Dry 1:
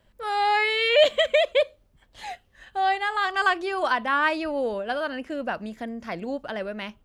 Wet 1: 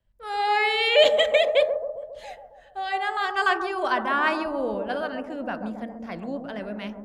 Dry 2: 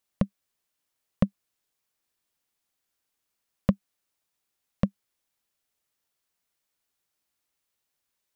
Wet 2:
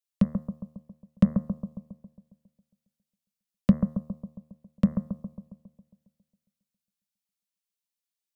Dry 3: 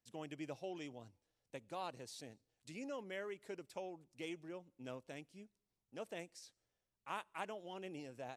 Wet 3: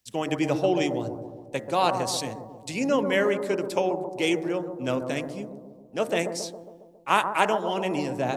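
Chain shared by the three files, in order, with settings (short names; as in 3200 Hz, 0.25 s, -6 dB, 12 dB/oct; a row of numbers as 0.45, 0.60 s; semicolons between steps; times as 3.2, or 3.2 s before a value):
de-hum 76.5 Hz, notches 27; dynamic EQ 210 Hz, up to +5 dB, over -47 dBFS, Q 2.3; on a send: analogue delay 0.136 s, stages 1024, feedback 69%, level -6.5 dB; on the sum: three-band expander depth 40%; normalise peaks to -6 dBFS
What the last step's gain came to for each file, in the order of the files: -1.0, -2.5, +21.5 dB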